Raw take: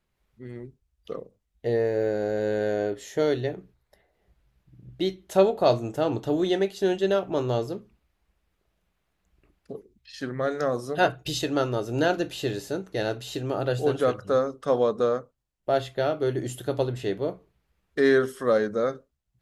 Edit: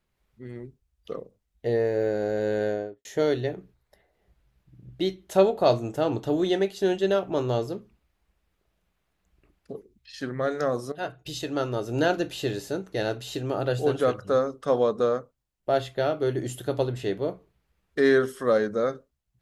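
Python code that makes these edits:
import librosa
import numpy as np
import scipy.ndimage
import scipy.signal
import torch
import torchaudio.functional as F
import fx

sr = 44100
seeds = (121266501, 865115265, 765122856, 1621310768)

y = fx.studio_fade_out(x, sr, start_s=2.62, length_s=0.43)
y = fx.edit(y, sr, fx.fade_in_from(start_s=10.92, length_s=1.03, floor_db=-14.0), tone=tone)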